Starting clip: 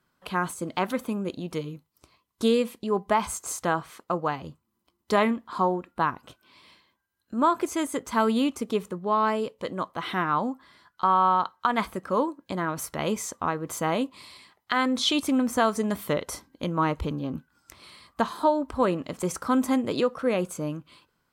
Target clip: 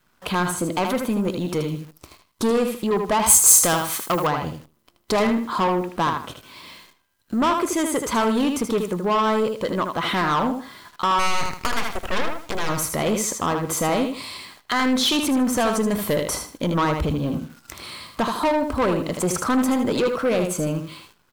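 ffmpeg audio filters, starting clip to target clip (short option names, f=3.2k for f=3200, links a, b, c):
-filter_complex "[0:a]adynamicequalizer=threshold=0.00891:dfrequency=280:dqfactor=3.3:tfrequency=280:tqfactor=3.3:attack=5:release=100:ratio=0.375:range=2:mode=cutabove:tftype=bell,aeval=exprs='0.376*(cos(1*acos(clip(val(0)/0.376,-1,1)))-cos(1*PI/2))+0.0473*(cos(5*acos(clip(val(0)/0.376,-1,1)))-cos(5*PI/2))':c=same,asplit=2[a][b];[b]acompressor=threshold=-30dB:ratio=6,volume=-0.5dB[c];[a][c]amix=inputs=2:normalize=0,asplit=3[d][e][f];[d]afade=t=out:st=11.18:d=0.02[g];[e]aeval=exprs='0.596*(cos(1*acos(clip(val(0)/0.596,-1,1)))-cos(1*PI/2))+0.0944*(cos(6*acos(clip(val(0)/0.596,-1,1)))-cos(6*PI/2))+0.0668*(cos(7*acos(clip(val(0)/0.596,-1,1)))-cos(7*PI/2))+0.188*(cos(8*acos(clip(val(0)/0.596,-1,1)))-cos(8*PI/2))':c=same,afade=t=in:st=11.18:d=0.02,afade=t=out:st=12.68:d=0.02[h];[f]afade=t=in:st=12.68:d=0.02[i];[g][h][i]amix=inputs=3:normalize=0,acontrast=79,asplit=2[j][k];[k]aecho=0:1:78|156|234:0.447|0.107|0.0257[l];[j][l]amix=inputs=2:normalize=0,acrusher=bits=8:dc=4:mix=0:aa=0.000001,asoftclip=type=tanh:threshold=-10dB,asettb=1/sr,asplit=3[m][n][o];[m]atrim=end=3.264[p];[n]atrim=start=3.26:end=4.27,asetpts=PTS-STARTPTS,afade=t=in:d=0.004:c=qsin,afade=t=out:st=1.006:d=0.004:c=qsin,aemphasis=mode=production:type=75kf[q];[o]atrim=start=4.266[r];[p][q]acrossfade=d=0.004:c1=hsin:c2=qsin[s];[s][r]acrossfade=d=0.004:c1=qsin:c2=hsin,volume=-5dB"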